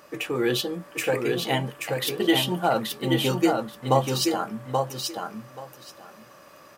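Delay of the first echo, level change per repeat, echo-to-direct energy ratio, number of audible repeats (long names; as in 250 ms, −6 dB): 830 ms, −15.5 dB, −4.0 dB, 2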